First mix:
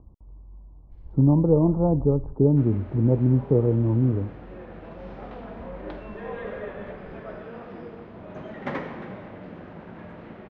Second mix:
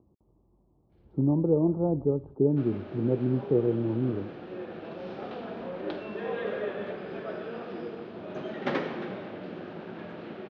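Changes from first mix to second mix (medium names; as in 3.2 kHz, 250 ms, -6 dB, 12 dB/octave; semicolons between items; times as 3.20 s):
speech -5.5 dB; second sound: remove tape spacing loss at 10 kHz 23 dB; master: add cabinet simulation 150–4800 Hz, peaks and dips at 370 Hz +6 dB, 1 kHz -5 dB, 2 kHz -6 dB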